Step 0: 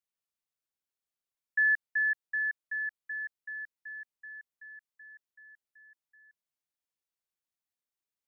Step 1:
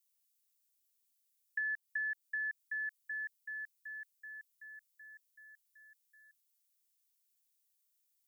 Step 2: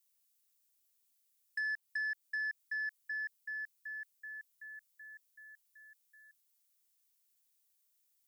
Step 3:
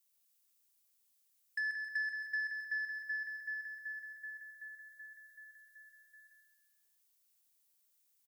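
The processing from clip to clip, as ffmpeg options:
-af "highpass=1.5k,aderivative,acompressor=threshold=-46dB:ratio=6,volume=11dB"
-af "asoftclip=type=tanh:threshold=-33.5dB,volume=2.5dB"
-af "aecho=1:1:135|270|405|540|675:0.596|0.262|0.115|0.0507|0.0223"

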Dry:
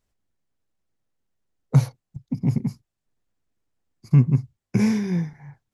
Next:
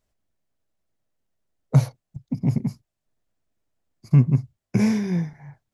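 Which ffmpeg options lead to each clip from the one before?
-af "equalizer=f=630:t=o:w=0.28:g=7"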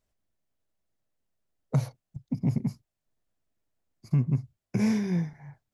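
-af "alimiter=limit=-12.5dB:level=0:latency=1:release=157,volume=-3.5dB"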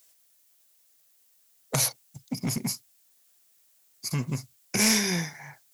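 -af "highpass=f=520:p=1,aeval=exprs='0.0841*sin(PI/2*1.41*val(0)/0.0841)':c=same,crystalizer=i=8.5:c=0"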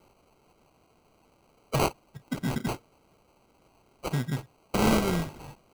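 -af "acrusher=samples=25:mix=1:aa=0.000001"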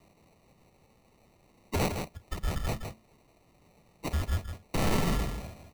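-af "afreqshift=-220,asoftclip=type=tanh:threshold=-21dB,aecho=1:1:161:0.447"

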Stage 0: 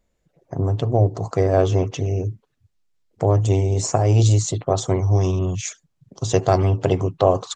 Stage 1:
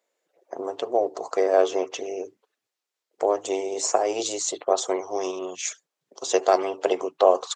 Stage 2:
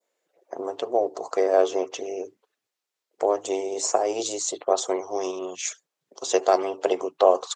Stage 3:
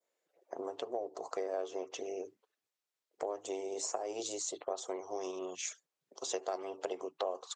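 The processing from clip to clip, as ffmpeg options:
-af "highpass=f=390:w=0.5412,highpass=f=390:w=1.3066"
-af "adynamicequalizer=threshold=0.01:dfrequency=2100:dqfactor=0.85:tfrequency=2100:tqfactor=0.85:attack=5:release=100:ratio=0.375:range=2.5:mode=cutabove:tftype=bell"
-af "acompressor=threshold=-29dB:ratio=3,volume=-7dB"

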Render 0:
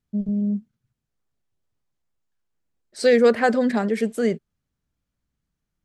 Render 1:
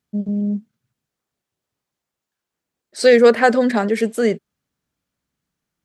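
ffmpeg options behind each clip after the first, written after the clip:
-af "highpass=f=250:p=1,volume=6dB"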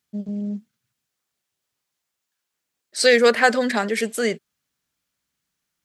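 -af "tiltshelf=f=1.1k:g=-6,volume=-1dB"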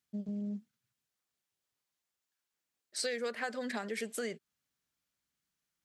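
-af "acompressor=threshold=-26dB:ratio=6,volume=-8dB"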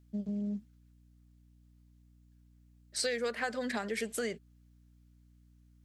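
-af "aeval=exprs='val(0)+0.000708*(sin(2*PI*60*n/s)+sin(2*PI*2*60*n/s)/2+sin(2*PI*3*60*n/s)/3+sin(2*PI*4*60*n/s)/4+sin(2*PI*5*60*n/s)/5)':c=same,volume=2.5dB"

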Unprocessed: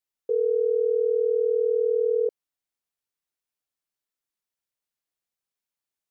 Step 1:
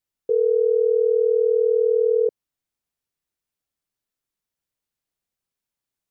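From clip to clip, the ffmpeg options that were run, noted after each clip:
-af "lowshelf=f=300:g=9,volume=1.5dB"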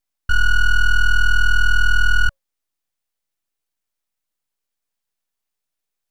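-af "afreqshift=270,aeval=exprs='abs(val(0))':c=same,volume=6dB"

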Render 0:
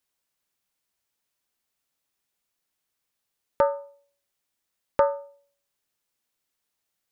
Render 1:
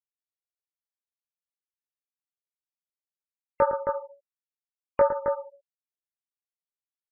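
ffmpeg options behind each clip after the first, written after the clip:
-af "flanger=delay=19.5:depth=5.8:speed=1.4,aecho=1:1:110.8|268.2:0.355|0.501,afftfilt=real='re*gte(hypot(re,im),0.00891)':imag='im*gte(hypot(re,im),0.00891)':win_size=1024:overlap=0.75,volume=2.5dB"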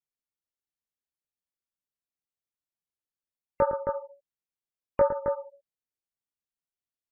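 -af "lowshelf=f=430:g=9.5,volume=-5dB"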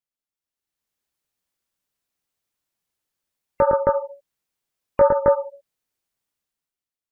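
-af "alimiter=limit=-17.5dB:level=0:latency=1:release=95,dynaudnorm=f=130:g=11:m=12dB"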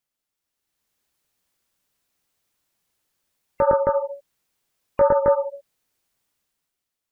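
-af "alimiter=limit=-16dB:level=0:latency=1:release=266,volume=7.5dB"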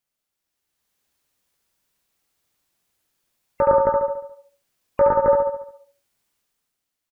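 -af "aecho=1:1:71|142|213|284|355|426:0.596|0.286|0.137|0.0659|0.0316|0.0152"

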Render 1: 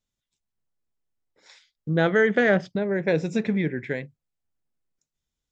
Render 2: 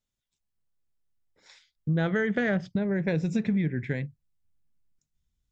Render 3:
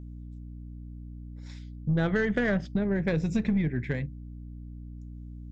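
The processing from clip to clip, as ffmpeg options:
-af "asubboost=boost=4.5:cutoff=210,acompressor=threshold=-20dB:ratio=6,volume=-2.5dB"
-af "aeval=exprs='val(0)+0.01*(sin(2*PI*60*n/s)+sin(2*PI*2*60*n/s)/2+sin(2*PI*3*60*n/s)/3+sin(2*PI*4*60*n/s)/4+sin(2*PI*5*60*n/s)/5)':c=same,aeval=exprs='0.224*(cos(1*acos(clip(val(0)/0.224,-1,1)))-cos(1*PI/2))+0.01*(cos(6*acos(clip(val(0)/0.224,-1,1)))-cos(6*PI/2))':c=same"

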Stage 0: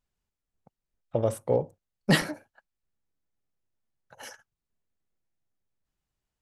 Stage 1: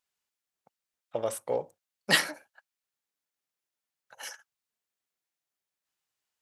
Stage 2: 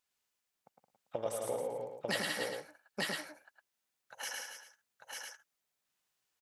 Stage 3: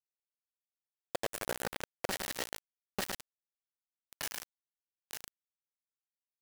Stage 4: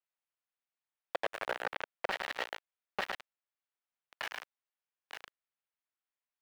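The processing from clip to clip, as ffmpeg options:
-af "highpass=f=1.4k:p=1,volume=4.5dB"
-filter_complex "[0:a]asplit=2[a][b];[b]aecho=0:1:104|121|169|286|895:0.211|0.119|0.398|0.168|0.631[c];[a][c]amix=inputs=2:normalize=0,acompressor=threshold=-35dB:ratio=4,asplit=2[d][e];[e]aecho=0:1:108:0.668[f];[d][f]amix=inputs=2:normalize=0"
-af "acompressor=threshold=-39dB:ratio=6,acrusher=bits=5:mix=0:aa=0.000001,volume=6dB"
-filter_complex "[0:a]acrossover=split=510 3400:gain=0.178 1 0.0631[a][b][c];[a][b][c]amix=inputs=3:normalize=0,volume=5dB"

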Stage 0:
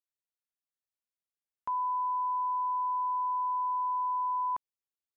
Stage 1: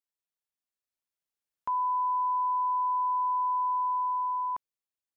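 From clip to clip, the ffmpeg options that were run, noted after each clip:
-af "dynaudnorm=f=220:g=11:m=4.5dB,volume=-1.5dB"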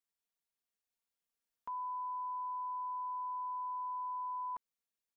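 -af "aecho=1:1:4.3:0.61,alimiter=level_in=10.5dB:limit=-24dB:level=0:latency=1,volume=-10.5dB,volume=-2dB"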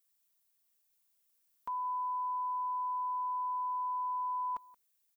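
-af "aemphasis=mode=production:type=50kf,aecho=1:1:176:0.0841,volume=3.5dB"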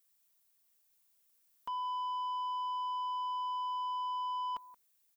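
-af "asoftclip=type=tanh:threshold=-37dB,volume=3dB"

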